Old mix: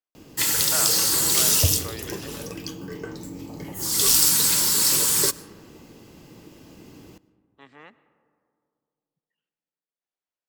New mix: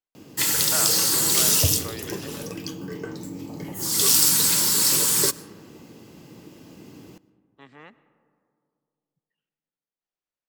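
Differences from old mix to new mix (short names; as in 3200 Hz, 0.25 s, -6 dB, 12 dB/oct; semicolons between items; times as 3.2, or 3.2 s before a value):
background: add HPF 150 Hz 12 dB/oct; master: add low shelf 140 Hz +10.5 dB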